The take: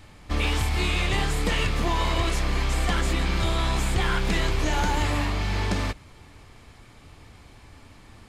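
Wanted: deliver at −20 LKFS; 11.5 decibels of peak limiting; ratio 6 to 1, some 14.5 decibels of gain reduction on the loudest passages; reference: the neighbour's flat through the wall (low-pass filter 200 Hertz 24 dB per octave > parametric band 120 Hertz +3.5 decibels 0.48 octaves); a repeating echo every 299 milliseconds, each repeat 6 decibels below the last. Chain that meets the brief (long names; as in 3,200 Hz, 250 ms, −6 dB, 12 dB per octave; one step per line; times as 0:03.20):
downward compressor 6 to 1, threshold −36 dBFS
brickwall limiter −37 dBFS
low-pass filter 200 Hz 24 dB per octave
parametric band 120 Hz +3.5 dB 0.48 octaves
repeating echo 299 ms, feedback 50%, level −6 dB
level +28.5 dB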